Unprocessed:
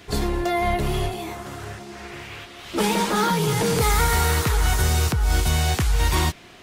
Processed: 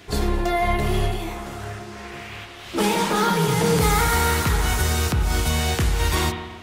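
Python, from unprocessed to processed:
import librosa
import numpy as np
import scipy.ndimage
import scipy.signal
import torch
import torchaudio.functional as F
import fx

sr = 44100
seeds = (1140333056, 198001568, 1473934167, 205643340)

y = fx.rev_spring(x, sr, rt60_s=1.2, pass_ms=(30, 48), chirp_ms=55, drr_db=4.5)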